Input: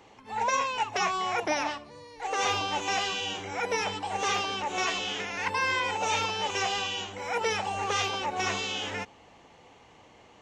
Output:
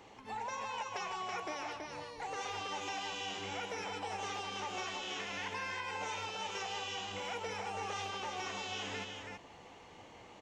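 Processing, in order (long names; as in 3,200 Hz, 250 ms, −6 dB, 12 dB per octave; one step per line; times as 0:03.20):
downward compressor 6 to 1, threshold −38 dBFS, peak gain reduction 14.5 dB
multi-tap delay 155/328 ms −9/−4.5 dB
level −1.5 dB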